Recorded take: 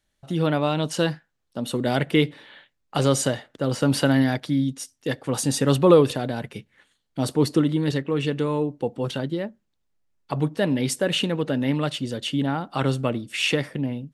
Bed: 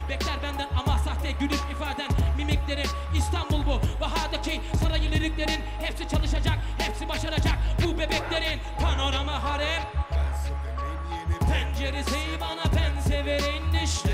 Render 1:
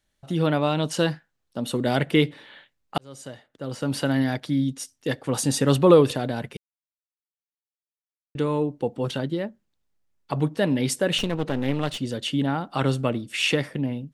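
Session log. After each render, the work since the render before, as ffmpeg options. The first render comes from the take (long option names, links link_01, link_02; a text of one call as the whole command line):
ffmpeg -i in.wav -filter_complex "[0:a]asettb=1/sr,asplit=3[link_01][link_02][link_03];[link_01]atrim=end=11.184[link_04];[link_02]atrim=start=11.18:end=11.99,asetpts=PTS-STARTPTS,afade=type=in:duration=0.004:curve=qsin,afade=type=out:start_time=0.806:duration=0.004:curve=qsin,aeval=exprs='clip(val(0),-1,0.0224)':channel_layout=same[link_05];[link_03]atrim=start=11.986[link_06];[link_04][link_05]acrossfade=duration=0.004:curve1=hsin:curve2=qsin[link_07];[link_07][link_06]acrossfade=duration=0.004:curve1=qsin:curve2=hsin,asplit=4[link_08][link_09][link_10][link_11];[link_08]atrim=end=2.98,asetpts=PTS-STARTPTS,afade=type=out:start_time=2.976:duration=0.004:curve=hsin[link_12];[link_09]atrim=start=2.98:end=6.57,asetpts=PTS-STARTPTS,afade=type=in:duration=1.77,afade=type=out:start_time=3.586:duration=0.004:curve=hsin[link_13];[link_10]atrim=start=6.57:end=8.35,asetpts=PTS-STARTPTS,volume=0[link_14];[link_11]atrim=start=8.35,asetpts=PTS-STARTPTS,afade=type=in:duration=0.004:curve=hsin[link_15];[link_12][link_13][link_14][link_15]concat=n=4:v=0:a=1" out.wav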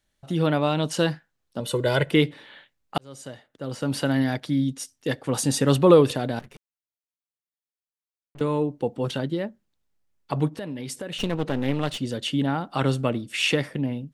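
ffmpeg -i in.wav -filter_complex "[0:a]asettb=1/sr,asplit=3[link_01][link_02][link_03];[link_01]atrim=end=1.604[link_04];[link_02]atrim=start=1.6:end=2.11,asetpts=PTS-STARTPTS,afade=type=in:duration=0.004:curve=qsin,afade=type=out:start_time=0.506:duration=0.004:curve=qsin,aecho=1:1:2:0.73,atrim=end_sample=22491[link_05];[link_03]atrim=start=2.106[link_06];[link_04][link_05]acrossfade=duration=0.004:curve1=hsin:curve2=qsin[link_07];[link_07][link_06]acrossfade=duration=0.004:curve1=qsin:curve2=hsin,asettb=1/sr,asplit=3[link_08][link_09][link_10];[link_08]atrim=end=6.394[link_11];[link_09]atrim=start=6.39:end=8.41,asetpts=PTS-STARTPTS,afade=type=in:duration=0.004:curve=qsin,afade=type=out:start_time=2.016:duration=0.004:curve=qsin,aeval=exprs='(tanh(141*val(0)+0.8)-tanh(0.8))/141':channel_layout=same[link_12];[link_10]atrim=start=8.406[link_13];[link_11][link_12]acrossfade=duration=0.004:curve1=hsin:curve2=qsin[link_14];[link_14][link_13]acrossfade=duration=0.004:curve1=qsin:curve2=hsin,asplit=3[link_15][link_16][link_17];[link_15]afade=type=out:start_time=10.49:duration=0.02[link_18];[link_16]acompressor=threshold=-30dB:ratio=6:attack=3.2:release=140:knee=1:detection=peak,afade=type=in:start_time=10.49:duration=0.02,afade=type=out:start_time=11.19:duration=0.02[link_19];[link_17]afade=type=in:start_time=11.19:duration=0.02[link_20];[link_18][link_19][link_20]amix=inputs=3:normalize=0" out.wav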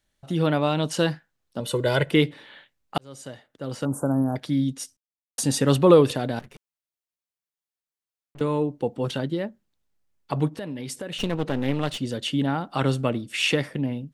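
ffmpeg -i in.wav -filter_complex "[0:a]asettb=1/sr,asplit=3[link_01][link_02][link_03];[link_01]atrim=end=3.854[link_04];[link_02]atrim=start=3.85:end=4.36,asetpts=PTS-STARTPTS,afade=type=in:duration=0.004:curve=qsin,afade=type=out:start_time=0.506:duration=0.004:curve=qsin,asuperstop=centerf=3100:order=12:qfactor=0.55[link_05];[link_03]atrim=start=4.356[link_06];[link_04][link_05]acrossfade=duration=0.004:curve1=hsin:curve2=qsin[link_07];[link_07][link_06]acrossfade=duration=0.004:curve1=qsin:curve2=hsin,asplit=3[link_08][link_09][link_10];[link_08]atrim=end=4.97,asetpts=PTS-STARTPTS,afade=type=out:start_time=4.966:duration=0.004:curve=hsin[link_11];[link_09]atrim=start=4.97:end=5.38,asetpts=PTS-STARTPTS,volume=0[link_12];[link_10]atrim=start=5.38,asetpts=PTS-STARTPTS,afade=type=in:duration=0.004:curve=hsin[link_13];[link_11][link_12][link_13]concat=n=3:v=0:a=1" out.wav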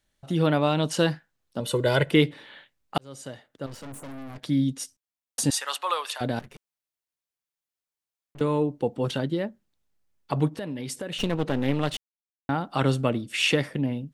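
ffmpeg -i in.wav -filter_complex "[0:a]asettb=1/sr,asplit=3[link_01][link_02][link_03];[link_01]atrim=end=3.664[link_04];[link_02]atrim=start=3.66:end=4.44,asetpts=PTS-STARTPTS,afade=type=in:duration=0.004:curve=qsin,afade=type=out:start_time=0.776:duration=0.004:curve=qsin,aeval=exprs='(tanh(79.4*val(0)+0.75)-tanh(0.75))/79.4':channel_layout=same[link_05];[link_03]atrim=start=4.436[link_06];[link_04][link_05]acrossfade=duration=0.004:curve1=hsin:curve2=qsin[link_07];[link_07][link_06]acrossfade=duration=0.004:curve1=qsin:curve2=hsin,asettb=1/sr,asplit=3[link_08][link_09][link_10];[link_08]atrim=end=5.504[link_11];[link_09]atrim=start=5.5:end=6.21,asetpts=PTS-STARTPTS,afade=type=in:duration=0.004:curve=qsin,afade=type=out:start_time=0.706:duration=0.004:curve=qsin,highpass=frequency=880:width=0.5412,highpass=frequency=880:width=1.3066[link_12];[link_10]atrim=start=6.206[link_13];[link_11][link_12]acrossfade=duration=0.004:curve1=hsin:curve2=qsin[link_14];[link_14][link_13]acrossfade=duration=0.004:curve1=qsin:curve2=hsin,asplit=3[link_15][link_16][link_17];[link_15]atrim=end=11.97,asetpts=PTS-STARTPTS,afade=type=out:start_time=11.966:duration=0.004:curve=hsin[link_18];[link_16]atrim=start=11.97:end=12.49,asetpts=PTS-STARTPTS,volume=0[link_19];[link_17]atrim=start=12.49,asetpts=PTS-STARTPTS,afade=type=in:duration=0.004:curve=hsin[link_20];[link_18][link_19][link_20]concat=n=3:v=0:a=1" out.wav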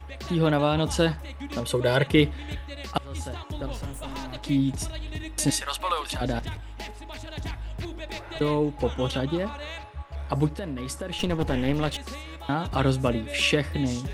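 ffmpeg -i in.wav -i bed.wav -filter_complex "[1:a]volume=-10dB[link_01];[0:a][link_01]amix=inputs=2:normalize=0" out.wav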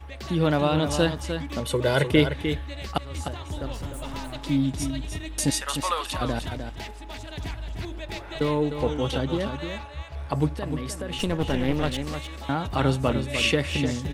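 ffmpeg -i in.wav -af "aecho=1:1:303:0.398" out.wav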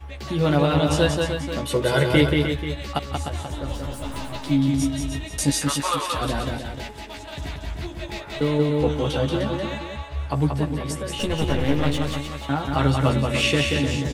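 ffmpeg -i in.wav -filter_complex "[0:a]asplit=2[link_01][link_02];[link_02]adelay=14,volume=-4dB[link_03];[link_01][link_03]amix=inputs=2:normalize=0,aecho=1:1:182:0.631" out.wav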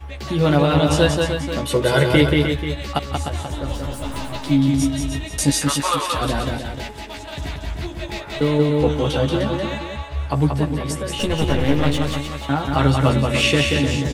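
ffmpeg -i in.wav -af "volume=3.5dB,alimiter=limit=-3dB:level=0:latency=1" out.wav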